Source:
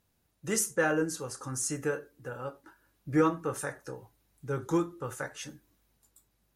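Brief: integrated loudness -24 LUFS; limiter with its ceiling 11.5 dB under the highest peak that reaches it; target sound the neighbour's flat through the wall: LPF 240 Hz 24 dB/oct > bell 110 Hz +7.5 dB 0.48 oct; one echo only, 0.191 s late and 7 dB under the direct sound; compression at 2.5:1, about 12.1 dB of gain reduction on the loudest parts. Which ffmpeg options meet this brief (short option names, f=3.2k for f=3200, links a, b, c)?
-af "acompressor=threshold=-39dB:ratio=2.5,alimiter=level_in=12dB:limit=-24dB:level=0:latency=1,volume=-12dB,lowpass=f=240:w=0.5412,lowpass=f=240:w=1.3066,equalizer=f=110:t=o:w=0.48:g=7.5,aecho=1:1:191:0.447,volume=26dB"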